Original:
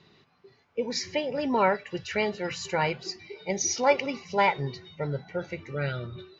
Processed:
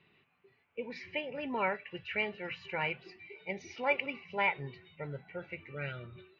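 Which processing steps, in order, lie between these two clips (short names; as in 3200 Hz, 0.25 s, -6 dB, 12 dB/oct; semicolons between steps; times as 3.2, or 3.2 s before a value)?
ladder low-pass 2900 Hz, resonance 60%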